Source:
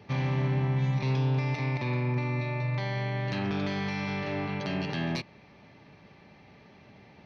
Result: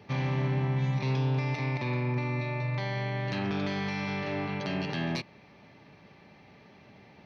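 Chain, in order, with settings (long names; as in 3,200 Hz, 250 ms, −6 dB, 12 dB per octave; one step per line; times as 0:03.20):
low-shelf EQ 68 Hz −6.5 dB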